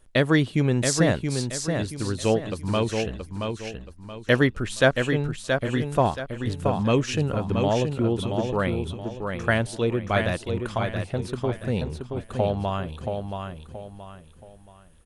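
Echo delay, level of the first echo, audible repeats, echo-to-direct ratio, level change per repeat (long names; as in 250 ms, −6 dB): 676 ms, −5.5 dB, 4, −5.0 dB, −9.5 dB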